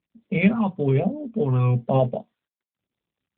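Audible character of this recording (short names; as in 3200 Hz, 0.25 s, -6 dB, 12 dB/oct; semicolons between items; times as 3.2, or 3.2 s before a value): phasing stages 2, 1.1 Hz, lowest notch 590–1200 Hz; AMR-NB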